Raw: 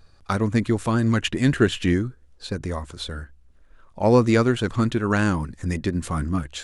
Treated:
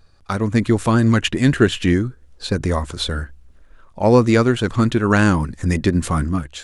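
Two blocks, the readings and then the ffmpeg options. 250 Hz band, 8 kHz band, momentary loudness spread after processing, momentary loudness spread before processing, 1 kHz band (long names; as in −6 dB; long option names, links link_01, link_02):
+4.5 dB, +5.0 dB, 9 LU, 14 LU, +4.5 dB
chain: -af "dynaudnorm=framelen=100:gausssize=11:maxgain=9dB"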